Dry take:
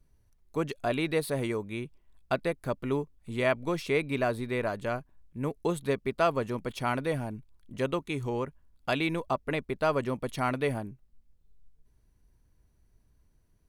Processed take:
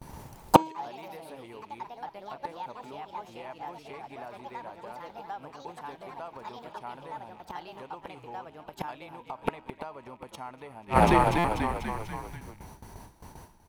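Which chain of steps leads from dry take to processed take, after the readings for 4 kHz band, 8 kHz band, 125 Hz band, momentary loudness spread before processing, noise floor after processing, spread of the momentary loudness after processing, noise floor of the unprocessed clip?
−2.5 dB, +0.5 dB, −1.5 dB, 10 LU, −55 dBFS, 22 LU, −66 dBFS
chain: loose part that buzzes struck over −46 dBFS, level −37 dBFS
noise gate with hold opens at −56 dBFS
delay with pitch and tempo change per echo 82 ms, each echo +3 semitones, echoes 3
high-pass filter 140 Hz 6 dB per octave
downward compressor 5 to 1, threshold −29 dBFS, peak gain reduction 9 dB
echo with shifted repeats 245 ms, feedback 64%, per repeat −44 Hz, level −14.5 dB
gate with flip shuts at −29 dBFS, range −40 dB
parametric band 880 Hz +14.5 dB 0.52 octaves
hum removal 318 Hz, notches 25
buffer that repeats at 0:11.38, samples 256, times 10
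boost into a limiter +26 dB

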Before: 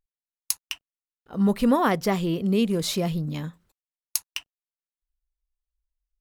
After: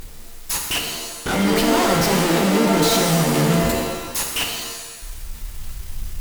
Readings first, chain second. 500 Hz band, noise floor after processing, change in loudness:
+8.0 dB, −36 dBFS, +6.0 dB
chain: power curve on the samples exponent 0.35
fuzz pedal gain 28 dB, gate −35 dBFS
reverb with rising layers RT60 1.1 s, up +7 semitones, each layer −2 dB, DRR 1.5 dB
level −8.5 dB

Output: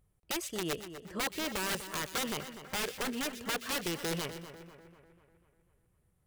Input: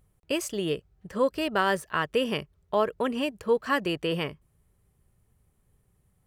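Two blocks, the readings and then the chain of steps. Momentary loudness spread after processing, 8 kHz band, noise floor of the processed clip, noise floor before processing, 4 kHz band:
8 LU, +4.5 dB, −73 dBFS, −69 dBFS, −2.5 dB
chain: wrap-around overflow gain 21 dB
echo with a time of its own for lows and highs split 2,200 Hz, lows 247 ms, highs 123 ms, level −11 dB
level −6.5 dB

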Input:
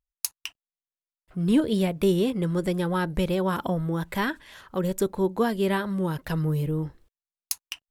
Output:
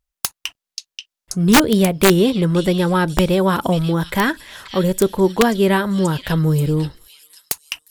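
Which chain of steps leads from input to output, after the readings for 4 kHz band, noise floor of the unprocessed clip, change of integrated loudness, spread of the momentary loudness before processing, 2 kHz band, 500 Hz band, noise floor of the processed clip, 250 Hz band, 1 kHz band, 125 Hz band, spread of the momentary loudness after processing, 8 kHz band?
+12.5 dB, below −85 dBFS, +9.0 dB, 10 LU, +11.5 dB, +9.0 dB, below −85 dBFS, +8.5 dB, +10.5 dB, +9.0 dB, 16 LU, +11.0 dB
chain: tape wow and flutter 21 cents
echo through a band-pass that steps 533 ms, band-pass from 4,100 Hz, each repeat 0.7 octaves, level −2.5 dB
wrap-around overflow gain 13.5 dB
level +9 dB

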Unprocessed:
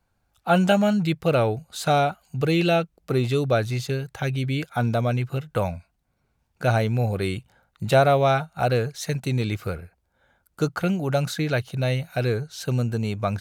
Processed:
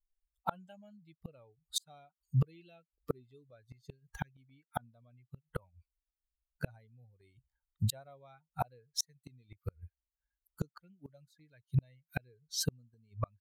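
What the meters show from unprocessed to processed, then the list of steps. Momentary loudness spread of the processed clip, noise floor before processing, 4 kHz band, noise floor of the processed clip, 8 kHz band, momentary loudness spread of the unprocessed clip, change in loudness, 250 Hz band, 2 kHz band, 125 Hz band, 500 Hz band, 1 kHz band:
21 LU, −72 dBFS, −11.0 dB, below −85 dBFS, −4.0 dB, 9 LU, −15.5 dB, −21.0 dB, −21.5 dB, −15.0 dB, −26.0 dB, −19.5 dB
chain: spectral dynamics exaggerated over time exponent 2
gate with flip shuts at −27 dBFS, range −41 dB
level +8 dB

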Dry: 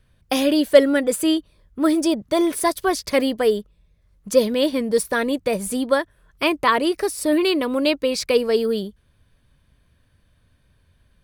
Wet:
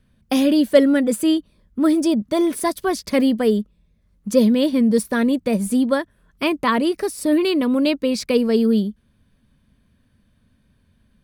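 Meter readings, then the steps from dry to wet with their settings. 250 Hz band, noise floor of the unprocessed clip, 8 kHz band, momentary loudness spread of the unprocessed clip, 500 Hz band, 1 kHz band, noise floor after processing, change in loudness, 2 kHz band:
+4.5 dB, −62 dBFS, −2.5 dB, 6 LU, −1.0 dB, −2.0 dB, −62 dBFS, +1.5 dB, −2.5 dB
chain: parametric band 220 Hz +13.5 dB 0.68 octaves
level −2.5 dB

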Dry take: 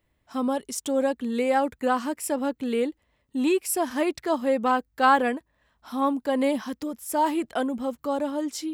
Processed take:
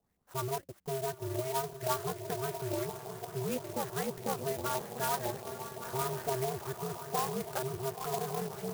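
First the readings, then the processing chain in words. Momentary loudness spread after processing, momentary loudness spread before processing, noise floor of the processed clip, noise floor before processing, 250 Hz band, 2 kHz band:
5 LU, 7 LU, −63 dBFS, −72 dBFS, −16.0 dB, −12.5 dB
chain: downward compressor 4 to 1, threshold −25 dBFS, peak gain reduction 9.5 dB
feedback delay with all-pass diffusion 953 ms, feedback 53%, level −8 dB
ring modulation 130 Hz
auto-filter low-pass saw up 5.9 Hz 700–3,300 Hz
converter with an unsteady clock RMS 0.09 ms
level −5.5 dB

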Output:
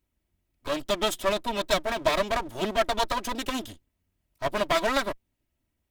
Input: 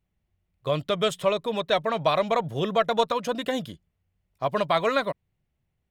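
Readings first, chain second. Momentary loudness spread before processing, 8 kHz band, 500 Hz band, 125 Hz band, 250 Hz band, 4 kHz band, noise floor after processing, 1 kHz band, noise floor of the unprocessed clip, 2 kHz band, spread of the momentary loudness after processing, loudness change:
9 LU, +7.0 dB, −3.0 dB, −7.5 dB, −2.0 dB, +0.5 dB, −79 dBFS, −2.0 dB, −78 dBFS, +1.5 dB, 9 LU, −2.0 dB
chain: lower of the sound and its delayed copy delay 3.1 ms
high-shelf EQ 5,400 Hz +7.5 dB

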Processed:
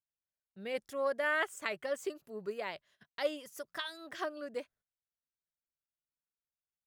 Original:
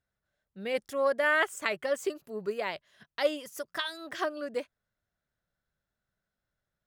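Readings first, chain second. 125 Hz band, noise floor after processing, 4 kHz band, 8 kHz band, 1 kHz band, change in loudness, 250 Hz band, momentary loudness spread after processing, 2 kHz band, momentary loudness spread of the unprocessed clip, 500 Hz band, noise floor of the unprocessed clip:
can't be measured, below −85 dBFS, −6.0 dB, −6.0 dB, −6.0 dB, −6.0 dB, −6.0 dB, 13 LU, −6.0 dB, 13 LU, −6.0 dB, below −85 dBFS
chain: noise gate −58 dBFS, range −17 dB
level −6 dB

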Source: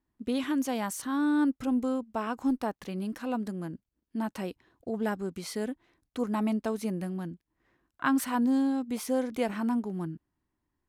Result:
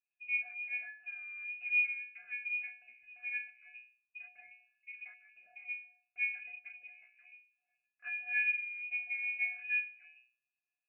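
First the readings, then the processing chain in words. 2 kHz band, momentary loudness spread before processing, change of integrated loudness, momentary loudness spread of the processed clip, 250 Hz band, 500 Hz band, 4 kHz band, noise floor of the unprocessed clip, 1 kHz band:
+7.0 dB, 13 LU, −4.5 dB, 21 LU, below −40 dB, below −40 dB, below −15 dB, −83 dBFS, below −30 dB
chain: resonances in every octave B, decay 0.43 s
voice inversion scrambler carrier 2,700 Hz
level +3 dB

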